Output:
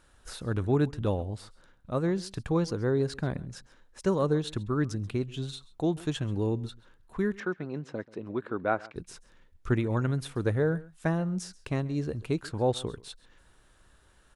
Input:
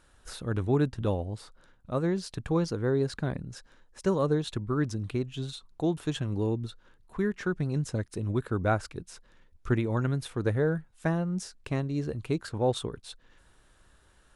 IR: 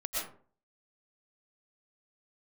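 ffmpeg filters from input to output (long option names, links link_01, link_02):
-filter_complex "[0:a]asettb=1/sr,asplit=3[link_01][link_02][link_03];[link_01]atrim=end=7.404[link_04];[link_02]atrim=start=7.4:end=8.96,asetpts=PTS-STARTPTS,afade=type=in:duration=0.004:curve=qsin,afade=type=out:start_time=1.556:duration=0.004:curve=qsin,highpass=260,lowpass=2800[link_05];[link_03]atrim=start=8.956[link_06];[link_04][link_05]acrossfade=duration=0.004:curve1=hsin:curve2=qsin[link_07];[link_07][link_06]acrossfade=duration=0.004:curve1=qsin:curve2=hsin,aecho=1:1:134:0.0841"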